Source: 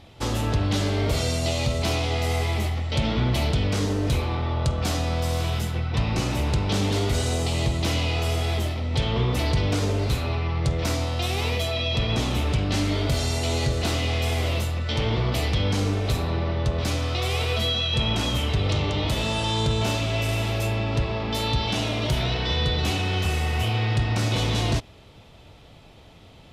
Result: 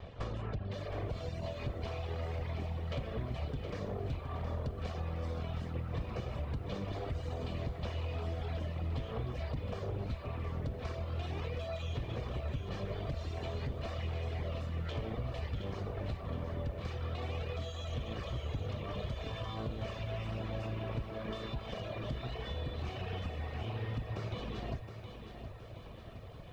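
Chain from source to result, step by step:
lower of the sound and its delayed copy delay 1.7 ms
reverb reduction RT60 1.5 s
downward compressor 10 to 1, threshold −39 dBFS, peak gain reduction 19 dB
head-to-tape spacing loss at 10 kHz 30 dB
feedback echo at a low word length 718 ms, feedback 55%, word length 12 bits, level −8.5 dB
level +4.5 dB

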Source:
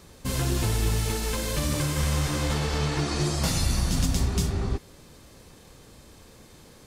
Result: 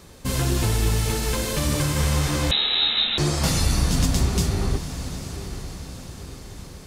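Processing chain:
on a send: feedback delay with all-pass diffusion 900 ms, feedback 51%, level −11 dB
0:02.51–0:03.18: on the sum: voice inversion scrambler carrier 3,900 Hz
level +3.5 dB

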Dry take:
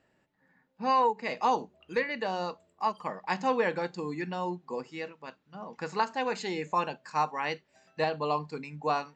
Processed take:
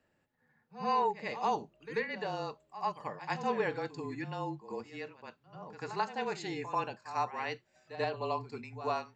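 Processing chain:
echo ahead of the sound 89 ms −12.5 dB
frequency shifter −29 Hz
level −5 dB

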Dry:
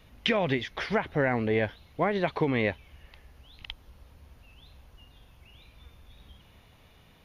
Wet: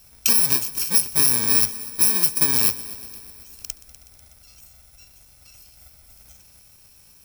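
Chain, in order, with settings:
samples in bit-reversed order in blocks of 64 samples
tilt shelving filter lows −6 dB, about 1,200 Hz
notch filter 2,900 Hz, Q 9.5
echo machine with several playback heads 123 ms, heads first and second, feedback 64%, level −20.5 dB
level +3.5 dB

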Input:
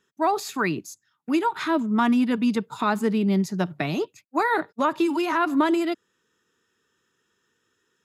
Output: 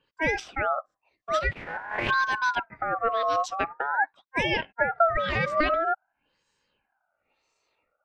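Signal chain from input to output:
0:01.51–0:02.09: compressing power law on the bin magnitudes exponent 0.14
auto-filter low-pass sine 0.96 Hz 380–6,000 Hz
ring modulator whose carrier an LFO sweeps 1,100 Hz, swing 20%, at 0.46 Hz
level −1 dB

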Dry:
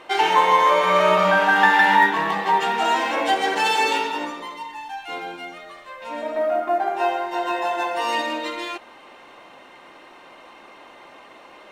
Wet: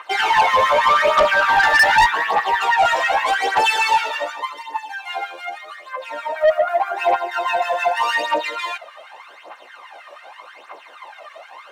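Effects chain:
phase shifter 0.84 Hz, delay 1.8 ms, feedback 66%
auto-filter high-pass sine 6.3 Hz 510–1,700 Hz
soft clipping −9 dBFS, distortion −9 dB

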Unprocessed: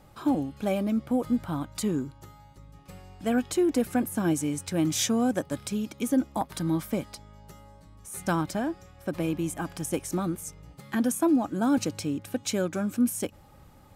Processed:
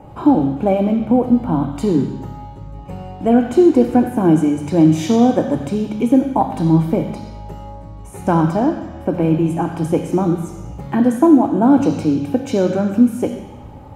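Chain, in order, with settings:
in parallel at 0 dB: downward compressor, threshold −38 dBFS, peak gain reduction 17.5 dB
on the sum: convolution reverb RT60 1.1 s, pre-delay 3 ms, DRR 6 dB
level −5 dB

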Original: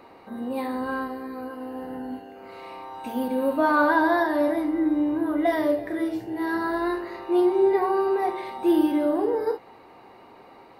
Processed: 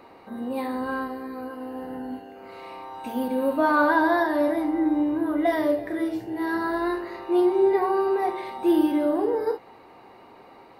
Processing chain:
0:04.61–0:05.03: parametric band 820 Hz +11.5 dB 0.23 octaves

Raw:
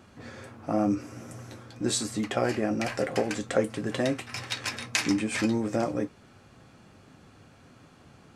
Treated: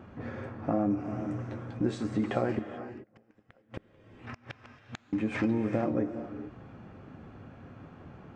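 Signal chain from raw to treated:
parametric band 4,300 Hz −5.5 dB 0.6 octaves
downward compressor 3 to 1, threshold −32 dBFS, peak gain reduction 10.5 dB
0:02.52–0:05.13: gate with flip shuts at −26 dBFS, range −38 dB
head-to-tape spacing loss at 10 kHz 33 dB
reverb whose tail is shaped and stops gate 460 ms rising, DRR 9.5 dB
level +6.5 dB

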